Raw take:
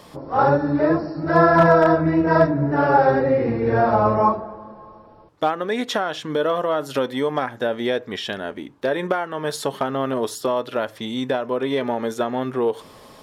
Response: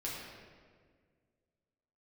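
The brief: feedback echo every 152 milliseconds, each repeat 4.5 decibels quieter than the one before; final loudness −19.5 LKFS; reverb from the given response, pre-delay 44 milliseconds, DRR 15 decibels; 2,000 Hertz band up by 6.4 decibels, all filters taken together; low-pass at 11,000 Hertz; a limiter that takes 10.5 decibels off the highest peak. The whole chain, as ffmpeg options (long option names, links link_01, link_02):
-filter_complex "[0:a]lowpass=11000,equalizer=frequency=2000:width_type=o:gain=8.5,alimiter=limit=-11.5dB:level=0:latency=1,aecho=1:1:152|304|456|608|760|912|1064|1216|1368:0.596|0.357|0.214|0.129|0.0772|0.0463|0.0278|0.0167|0.01,asplit=2[link_01][link_02];[1:a]atrim=start_sample=2205,adelay=44[link_03];[link_02][link_03]afir=irnorm=-1:irlink=0,volume=-17dB[link_04];[link_01][link_04]amix=inputs=2:normalize=0,volume=1dB"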